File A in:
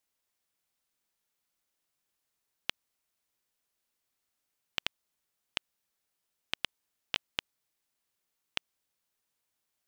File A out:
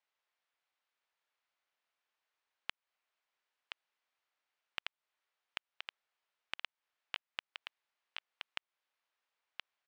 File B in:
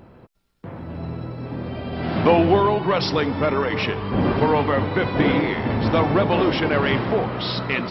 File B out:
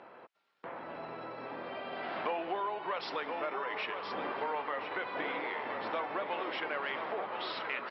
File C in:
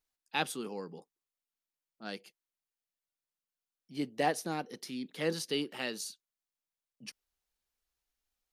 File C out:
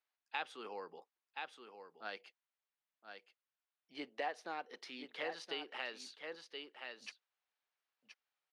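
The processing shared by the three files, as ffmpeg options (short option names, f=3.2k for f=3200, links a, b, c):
-af "highpass=670,lowpass=2.9k,aecho=1:1:1023:0.316,acompressor=threshold=-43dB:ratio=2.5,volume=2.5dB"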